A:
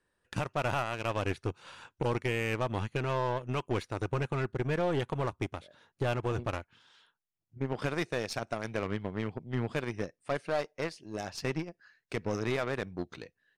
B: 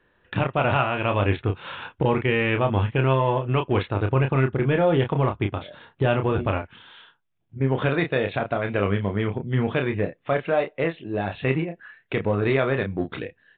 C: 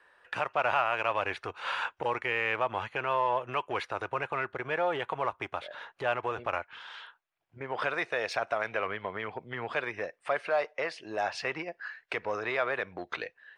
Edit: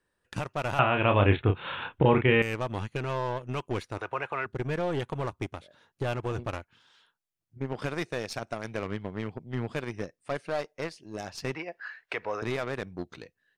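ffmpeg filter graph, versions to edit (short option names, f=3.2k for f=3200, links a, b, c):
-filter_complex "[2:a]asplit=2[a][b];[0:a]asplit=4[c][d][e][f];[c]atrim=end=0.792[g];[1:a]atrim=start=0.788:end=2.422[h];[d]atrim=start=2.418:end=3.982[i];[a]atrim=start=3.978:end=4.462[j];[e]atrim=start=4.458:end=11.552[k];[b]atrim=start=11.548:end=12.422[l];[f]atrim=start=12.418[m];[g][h]acrossfade=d=0.004:c1=hsin:c2=hsin[n];[n][i]acrossfade=d=0.004:c1=hsin:c2=hsin[o];[o][j]acrossfade=d=0.004:c1=hsin:c2=hsin[p];[p][k]acrossfade=d=0.004:c1=hsin:c2=hsin[q];[q][l]acrossfade=d=0.004:c1=hsin:c2=hsin[r];[r][m]acrossfade=d=0.004:c1=hsin:c2=hsin"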